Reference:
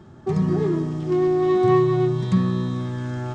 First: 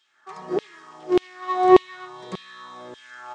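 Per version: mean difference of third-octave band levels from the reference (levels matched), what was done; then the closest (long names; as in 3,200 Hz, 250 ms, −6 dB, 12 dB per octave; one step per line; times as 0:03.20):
10.0 dB: auto-filter high-pass saw down 1.7 Hz 420–3,200 Hz
expander for the loud parts 1.5 to 1, over −32 dBFS
level +5 dB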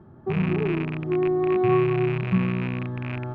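3.5 dB: loose part that buzzes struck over −24 dBFS, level −11 dBFS
low-pass filter 1,400 Hz 12 dB per octave
level −3 dB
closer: second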